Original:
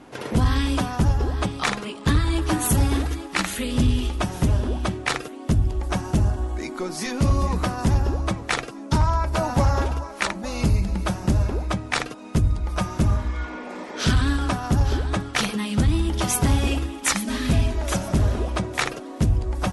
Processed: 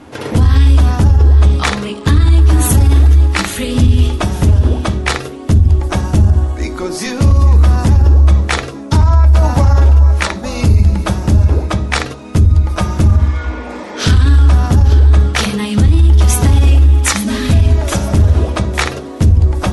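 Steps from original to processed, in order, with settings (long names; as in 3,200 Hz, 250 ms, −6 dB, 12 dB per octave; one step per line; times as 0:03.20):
on a send at −5 dB: flat-topped bell 1,400 Hz −8.5 dB 2.3 octaves + convolution reverb RT60 0.45 s, pre-delay 3 ms
on the sum: boost into a limiter +8.5 dB
level −1 dB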